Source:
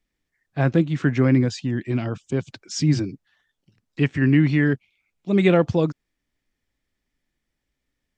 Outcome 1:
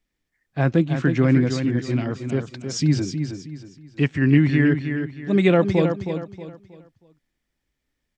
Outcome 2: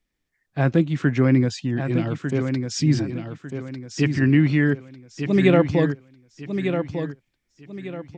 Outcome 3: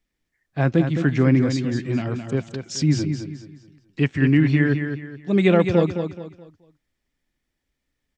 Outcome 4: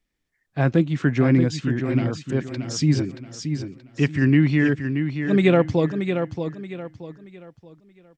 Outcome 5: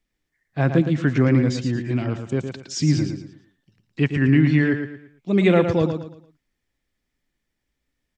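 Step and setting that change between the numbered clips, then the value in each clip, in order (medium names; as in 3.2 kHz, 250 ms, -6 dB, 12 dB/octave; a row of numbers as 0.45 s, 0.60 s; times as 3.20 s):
feedback delay, time: 317 ms, 1199 ms, 213 ms, 628 ms, 113 ms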